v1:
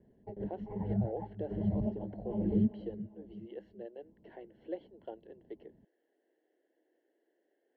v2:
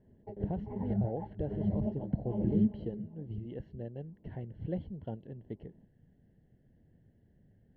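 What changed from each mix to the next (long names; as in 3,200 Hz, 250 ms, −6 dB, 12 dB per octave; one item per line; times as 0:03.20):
speech: remove Chebyshev high-pass filter 320 Hz, order 5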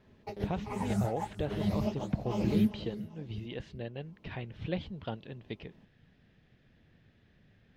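background: remove high-frequency loss of the air 260 metres
master: remove moving average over 36 samples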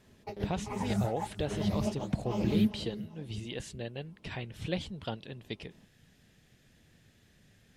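speech: remove high-frequency loss of the air 270 metres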